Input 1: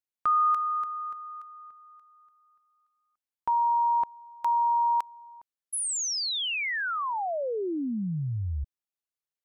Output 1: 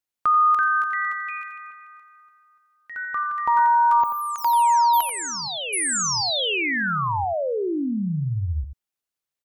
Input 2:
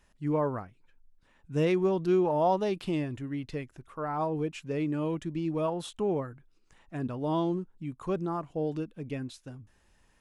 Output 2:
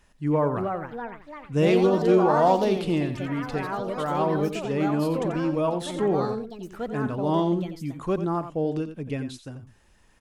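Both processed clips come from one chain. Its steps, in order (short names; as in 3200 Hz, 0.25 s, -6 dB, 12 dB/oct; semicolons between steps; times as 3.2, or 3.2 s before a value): echoes that change speed 0.386 s, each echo +4 st, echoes 3, each echo -6 dB; on a send: echo 88 ms -10.5 dB; on the sum: gain +5 dB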